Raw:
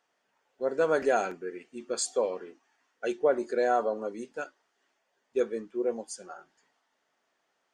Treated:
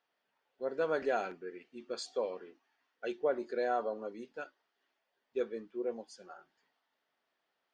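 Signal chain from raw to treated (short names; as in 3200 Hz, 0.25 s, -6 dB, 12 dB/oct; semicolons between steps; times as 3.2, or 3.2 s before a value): resonant high shelf 6000 Hz -12 dB, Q 1.5; gain -7 dB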